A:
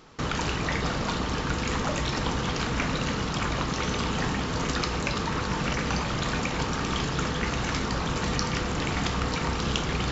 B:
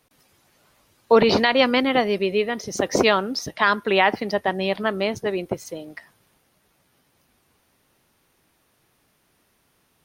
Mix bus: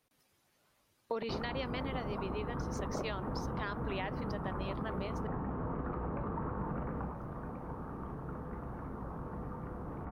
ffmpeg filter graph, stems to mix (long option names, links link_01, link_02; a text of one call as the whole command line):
ffmpeg -i stem1.wav -i stem2.wav -filter_complex "[0:a]lowpass=frequency=1200:width=0.5412,lowpass=frequency=1200:width=1.3066,adelay=1100,volume=-2dB,afade=type=out:start_time=6.81:duration=0.36:silence=0.281838[link_01];[1:a]volume=-12.5dB,asplit=3[link_02][link_03][link_04];[link_02]atrim=end=5.27,asetpts=PTS-STARTPTS,afade=type=out:start_time=5.266:duration=0.004:curve=hsin[link_05];[link_03]atrim=start=5.27:end=6.57,asetpts=PTS-STARTPTS,volume=0[link_06];[link_04]atrim=start=6.57,asetpts=PTS-STARTPTS,afade=type=in:duration=0.004:curve=hsin[link_07];[link_05][link_06][link_07]concat=n=3:v=0:a=1[link_08];[link_01][link_08]amix=inputs=2:normalize=0,acompressor=threshold=-34dB:ratio=6" out.wav